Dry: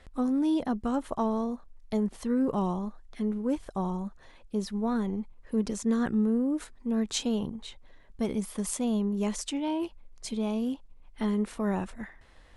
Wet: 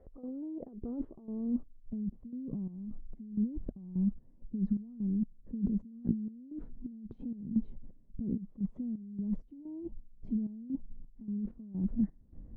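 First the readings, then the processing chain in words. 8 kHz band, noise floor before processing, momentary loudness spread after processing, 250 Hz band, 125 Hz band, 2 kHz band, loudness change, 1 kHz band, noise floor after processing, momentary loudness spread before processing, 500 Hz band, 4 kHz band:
under -40 dB, -55 dBFS, 12 LU, -6.0 dB, -2.0 dB, under -35 dB, -7.0 dB, under -30 dB, -59 dBFS, 11 LU, -18.5 dB, under -40 dB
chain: compressor with a negative ratio -38 dBFS, ratio -1; low-pass sweep 510 Hz -> 220 Hz, 0.35–2.06 s; trance gate "..xxx..xx" 129 bpm -12 dB

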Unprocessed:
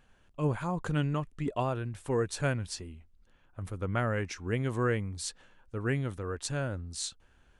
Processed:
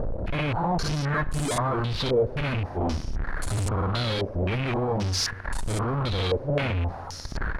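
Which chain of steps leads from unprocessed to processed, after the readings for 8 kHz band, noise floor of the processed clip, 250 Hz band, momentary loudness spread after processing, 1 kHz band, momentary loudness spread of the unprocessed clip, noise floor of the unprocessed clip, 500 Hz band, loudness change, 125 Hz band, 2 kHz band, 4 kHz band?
+4.5 dB, -37 dBFS, +4.5 dB, 7 LU, +8.0 dB, 10 LU, -64 dBFS, +6.0 dB, +6.0 dB, +6.0 dB, +6.0 dB, +11.5 dB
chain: bit-reversed sample order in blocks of 16 samples; in parallel at -2.5 dB: upward compressor, threshold -33 dBFS; on the sum: reverb removal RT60 0.98 s; waveshaping leveller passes 5; on a send: reverse echo 55 ms -5 dB; on the sum: fuzz box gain 46 dB, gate -42 dBFS; bass shelf 93 Hz +8.5 dB; plate-style reverb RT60 1.9 s, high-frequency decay 0.85×, DRR 15.5 dB; peak limiter -14 dBFS, peak gain reduction 10.5 dB; step-sequenced low-pass 3.8 Hz 550–8000 Hz; trim -8 dB

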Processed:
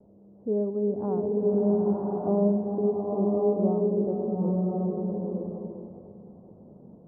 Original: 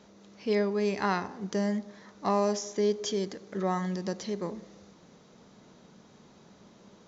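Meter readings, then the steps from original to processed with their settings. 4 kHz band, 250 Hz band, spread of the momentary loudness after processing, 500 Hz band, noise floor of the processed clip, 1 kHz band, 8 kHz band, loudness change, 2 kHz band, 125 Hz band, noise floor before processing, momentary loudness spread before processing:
under -40 dB, +6.5 dB, 12 LU, +5.5 dB, -53 dBFS, -3.5 dB, no reading, +4.0 dB, under -25 dB, +7.0 dB, -57 dBFS, 8 LU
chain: inverse Chebyshev low-pass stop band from 2.3 kHz, stop band 60 dB; peaking EQ 98 Hz +6 dB 0.91 oct; two-band feedback delay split 390 Hz, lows 134 ms, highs 403 ms, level -15 dB; gate with hold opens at -52 dBFS; swelling reverb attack 1060 ms, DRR -3.5 dB

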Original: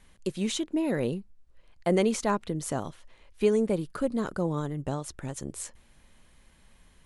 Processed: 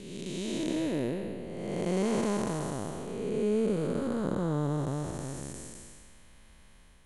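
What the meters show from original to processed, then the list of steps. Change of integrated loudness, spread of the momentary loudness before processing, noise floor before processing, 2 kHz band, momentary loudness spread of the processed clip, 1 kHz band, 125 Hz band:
-2.5 dB, 13 LU, -60 dBFS, -4.0 dB, 11 LU, -3.5 dB, +0.5 dB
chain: spectral blur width 587 ms; trim +4 dB

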